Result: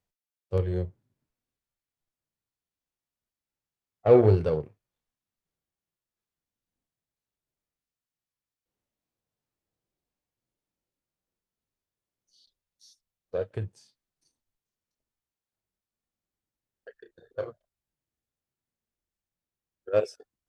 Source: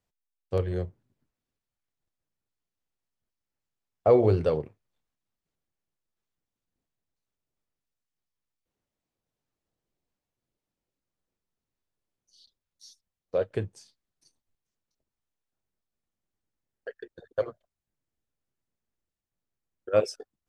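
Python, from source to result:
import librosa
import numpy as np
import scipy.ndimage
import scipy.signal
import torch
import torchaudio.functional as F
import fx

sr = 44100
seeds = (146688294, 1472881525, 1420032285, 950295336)

y = fx.cheby_harmonics(x, sr, harmonics=(7,), levels_db=(-27,), full_scale_db=-8.5)
y = fx.hpss(y, sr, part='percussive', gain_db=-10)
y = fx.doubler(y, sr, ms=32.0, db=-8.5, at=(16.95, 17.47))
y = y * 10.0 ** (4.5 / 20.0)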